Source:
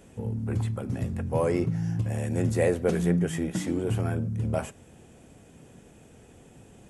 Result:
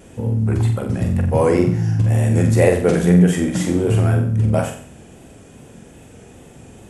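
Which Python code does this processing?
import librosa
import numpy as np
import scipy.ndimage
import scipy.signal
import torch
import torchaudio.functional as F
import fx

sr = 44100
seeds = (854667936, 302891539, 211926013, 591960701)

y = fx.wow_flutter(x, sr, seeds[0], rate_hz=2.1, depth_cents=47.0)
y = fx.room_flutter(y, sr, wall_m=7.7, rt60_s=0.51)
y = y * 10.0 ** (8.5 / 20.0)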